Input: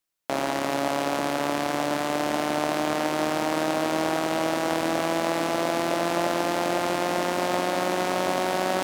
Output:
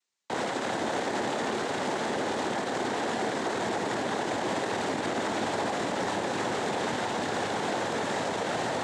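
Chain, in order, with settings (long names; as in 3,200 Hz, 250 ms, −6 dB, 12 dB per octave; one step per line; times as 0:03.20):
cochlear-implant simulation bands 6
brickwall limiter −21 dBFS, peak gain reduction 9.5 dB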